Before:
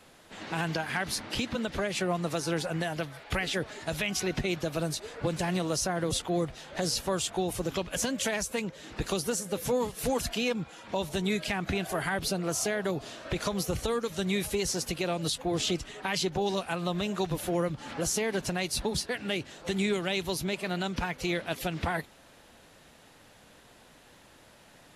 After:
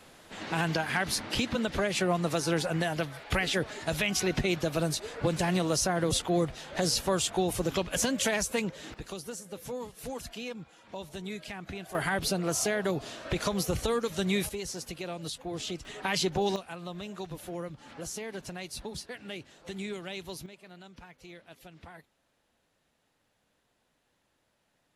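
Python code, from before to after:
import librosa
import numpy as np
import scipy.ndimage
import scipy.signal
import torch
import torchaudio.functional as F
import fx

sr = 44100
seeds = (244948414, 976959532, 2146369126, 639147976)

y = fx.gain(x, sr, db=fx.steps((0.0, 2.0), (8.94, -9.5), (11.95, 1.0), (14.49, -7.0), (15.85, 1.0), (16.56, -9.0), (20.46, -18.5)))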